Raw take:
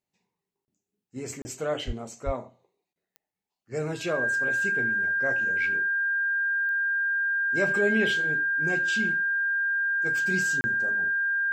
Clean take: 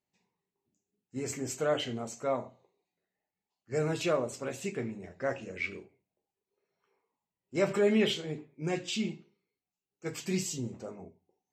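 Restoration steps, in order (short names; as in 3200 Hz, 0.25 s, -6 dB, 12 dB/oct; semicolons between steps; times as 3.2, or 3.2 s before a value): de-click; notch 1600 Hz, Q 30; de-plosive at 1.86/2.25; interpolate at 0.65/1.42/2.93/10.61, 30 ms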